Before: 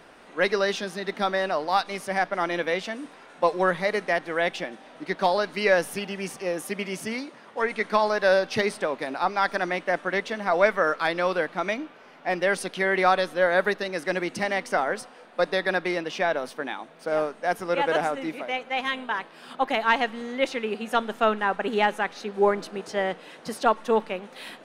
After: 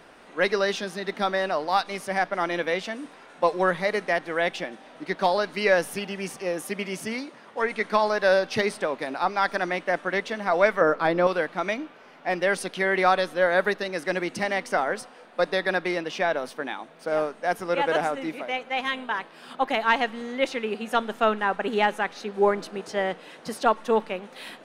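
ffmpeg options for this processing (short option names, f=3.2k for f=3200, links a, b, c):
-filter_complex "[0:a]asettb=1/sr,asplit=3[a][b][c];[a]atrim=end=10.814[d];[b]atrim=start=10.81:end=11.27,asetpts=PTS-STARTPTS,afade=t=in:d=0.004:c=qsin,afade=t=out:st=0.456:d=0.004:c=qsin,tiltshelf=f=1.3k:g=7.5[e];[c]atrim=start=11.266[f];[d][e]acrossfade=d=0.004:c1=hsin:c2=qsin[g];[g][f]acrossfade=d=0.004:c1=qsin:c2=hsin"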